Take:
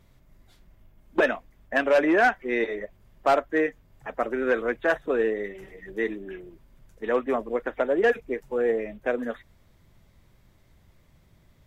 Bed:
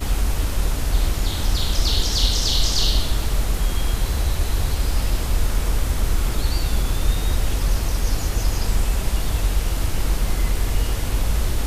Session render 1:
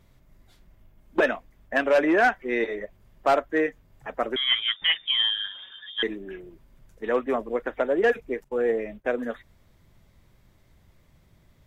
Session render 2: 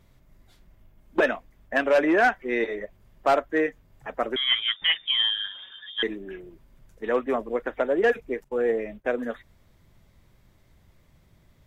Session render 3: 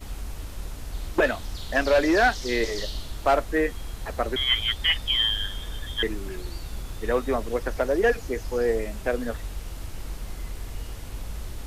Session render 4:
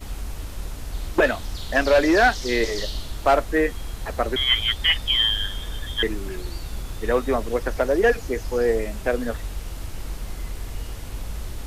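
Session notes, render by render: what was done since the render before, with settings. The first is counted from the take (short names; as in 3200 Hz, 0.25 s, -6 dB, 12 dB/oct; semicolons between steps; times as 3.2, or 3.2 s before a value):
4.36–6.03 inverted band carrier 3600 Hz; 8.44–9.05 expander -44 dBFS
nothing audible
add bed -14 dB
gain +3 dB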